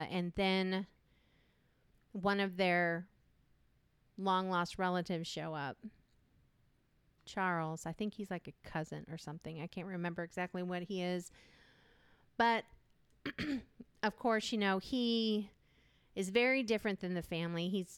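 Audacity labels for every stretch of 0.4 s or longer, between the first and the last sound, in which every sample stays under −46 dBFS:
0.840000	2.150000	silence
3.020000	4.180000	silence
5.880000	7.270000	silence
11.270000	12.390000	silence
12.610000	13.260000	silence
15.460000	16.160000	silence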